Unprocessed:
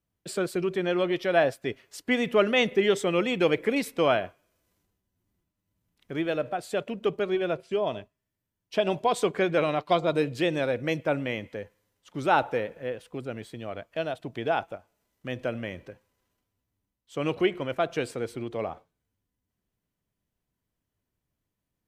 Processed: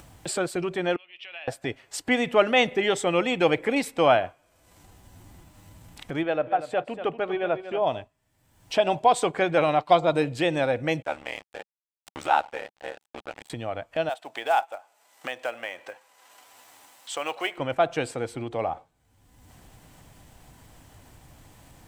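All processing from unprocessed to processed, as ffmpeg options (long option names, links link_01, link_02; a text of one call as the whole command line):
ffmpeg -i in.wav -filter_complex "[0:a]asettb=1/sr,asplit=3[link_01][link_02][link_03];[link_01]atrim=end=0.964[link_04];[link_02]atrim=start=0.96:end=1.48,asetpts=PTS-STARTPTS,afade=type=in:duration=0.004:curve=qsin,afade=type=out:start_time=0.516:duration=0.004:curve=qsin,acompressor=threshold=-31dB:ratio=6:attack=3.2:release=140:knee=1:detection=peak,bandpass=frequency=2700:width_type=q:width=6.5[link_05];[link_03]atrim=start=1.476[link_06];[link_04][link_05]acrossfade=duration=0.004:curve1=hsin:curve2=qsin[link_07];[link_07][link_06]acrossfade=duration=0.004:curve1=qsin:curve2=hsin,asettb=1/sr,asplit=3[link_08][link_09][link_10];[link_08]atrim=end=6.234[link_11];[link_09]atrim=start=6.23:end=7.82,asetpts=PTS-STARTPTS,afade=type=in:duration=0.004:curve=qsin,afade=type=out:start_time=1.586:duration=0.004:curve=qsin,bass=frequency=250:gain=-5,treble=frequency=4000:gain=-14,aecho=1:1:238:0.251,atrim=end_sample=70119[link_12];[link_10]atrim=start=7.816[link_13];[link_11][link_12]acrossfade=duration=0.004:curve1=hsin:curve2=qsin[link_14];[link_14][link_13]acrossfade=duration=0.004:curve1=qsin:curve2=hsin,asettb=1/sr,asplit=3[link_15][link_16][link_17];[link_15]atrim=end=11.024[link_18];[link_16]atrim=start=11.02:end=13.5,asetpts=PTS-STARTPTS,afade=type=in:duration=0.004:curve=qsin,afade=type=out:start_time=2.476:duration=0.004:curve=qsin,highpass=frequency=860:poles=1,aeval=exprs='val(0)*sin(2*PI*37*n/s)':channel_layout=same,aeval=exprs='sgn(val(0))*max(abs(val(0))-0.00473,0)':channel_layout=same[link_19];[link_17]atrim=start=13.496[link_20];[link_18][link_19]acrossfade=duration=0.004:curve1=hsin:curve2=qsin[link_21];[link_21][link_20]acrossfade=duration=0.004:curve1=qsin:curve2=hsin,asettb=1/sr,asplit=3[link_22][link_23][link_24];[link_22]atrim=end=14.094[link_25];[link_23]atrim=start=14.09:end=17.58,asetpts=PTS-STARTPTS,afade=type=in:duration=0.004:curve=qsin,afade=type=out:start_time=3.486:duration=0.004:curve=qsin,highpass=690,acrusher=bits=5:mode=log:mix=0:aa=0.000001[link_26];[link_24]atrim=start=17.576[link_27];[link_25][link_26]acrossfade=duration=0.004:curve1=hsin:curve2=qsin[link_28];[link_28][link_27]acrossfade=duration=0.004:curve1=qsin:curve2=hsin,highshelf=frequency=7900:gain=-7,acompressor=mode=upward:threshold=-30dB:ratio=2.5,equalizer=frequency=200:width_type=o:width=0.33:gain=-7,equalizer=frequency=400:width_type=o:width=0.33:gain=-6,equalizer=frequency=800:width_type=o:width=0.33:gain=8,equalizer=frequency=8000:width_type=o:width=0.33:gain=7,volume=3dB" out.wav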